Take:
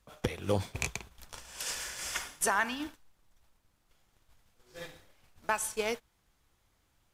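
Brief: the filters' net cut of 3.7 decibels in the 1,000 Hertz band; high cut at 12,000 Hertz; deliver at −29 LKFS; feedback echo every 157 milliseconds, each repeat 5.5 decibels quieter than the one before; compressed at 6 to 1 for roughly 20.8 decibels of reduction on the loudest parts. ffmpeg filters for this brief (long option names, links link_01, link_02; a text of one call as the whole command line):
ffmpeg -i in.wav -af "lowpass=12000,equalizer=frequency=1000:width_type=o:gain=-4.5,acompressor=threshold=-49dB:ratio=6,aecho=1:1:157|314|471|628|785|942|1099:0.531|0.281|0.149|0.079|0.0419|0.0222|0.0118,volume=22dB" out.wav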